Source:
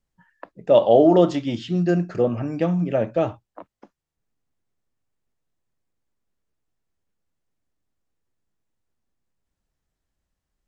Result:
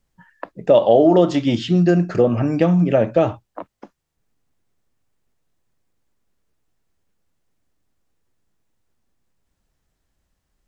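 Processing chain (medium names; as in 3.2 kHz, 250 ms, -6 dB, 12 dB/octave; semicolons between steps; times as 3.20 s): compression 2.5:1, threshold -20 dBFS, peak gain reduction 7.5 dB; trim +8 dB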